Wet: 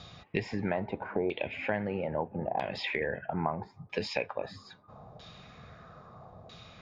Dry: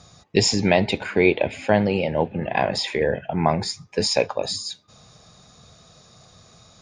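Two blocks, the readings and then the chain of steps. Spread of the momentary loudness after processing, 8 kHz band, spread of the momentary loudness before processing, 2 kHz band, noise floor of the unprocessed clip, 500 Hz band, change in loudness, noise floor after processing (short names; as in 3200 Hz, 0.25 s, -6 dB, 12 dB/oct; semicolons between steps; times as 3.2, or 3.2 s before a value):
19 LU, under -25 dB, 8 LU, -10.0 dB, -53 dBFS, -12.0 dB, -12.0 dB, -58 dBFS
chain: LFO low-pass saw down 0.77 Hz 710–3500 Hz; compressor 3:1, threshold -33 dBFS, peak gain reduction 17 dB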